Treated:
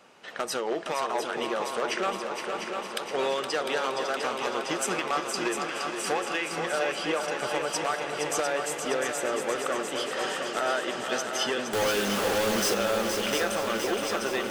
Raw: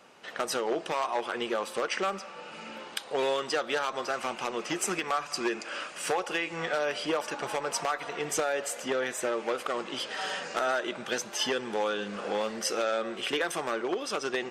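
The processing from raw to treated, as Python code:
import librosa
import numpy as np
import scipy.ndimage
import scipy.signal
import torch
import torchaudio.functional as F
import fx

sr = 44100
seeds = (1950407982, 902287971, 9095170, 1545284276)

y = fx.quant_companded(x, sr, bits=2, at=(11.73, 12.74))
y = fx.echo_heads(y, sr, ms=234, heads='second and third', feedback_pct=70, wet_db=-7.0)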